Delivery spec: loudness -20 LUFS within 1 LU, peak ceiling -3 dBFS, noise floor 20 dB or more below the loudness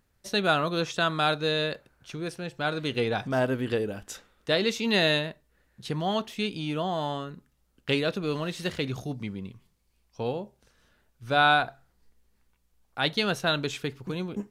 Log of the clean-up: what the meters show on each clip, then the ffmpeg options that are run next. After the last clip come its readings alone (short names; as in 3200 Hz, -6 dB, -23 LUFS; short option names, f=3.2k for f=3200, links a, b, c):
loudness -28.0 LUFS; peak -9.5 dBFS; loudness target -20.0 LUFS
-> -af "volume=8dB,alimiter=limit=-3dB:level=0:latency=1"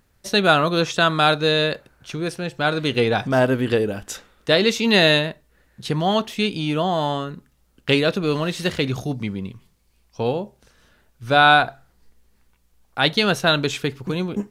loudness -20.0 LUFS; peak -3.0 dBFS; noise floor -63 dBFS